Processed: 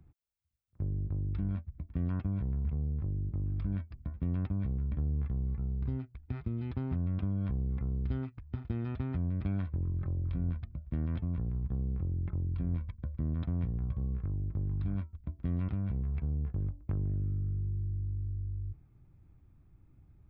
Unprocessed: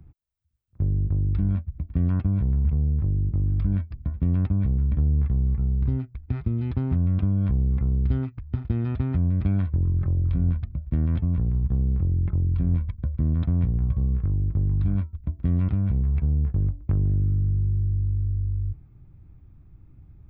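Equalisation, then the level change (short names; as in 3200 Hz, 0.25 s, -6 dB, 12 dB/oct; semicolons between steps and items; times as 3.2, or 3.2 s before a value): low shelf 220 Hz -6 dB; -5.5 dB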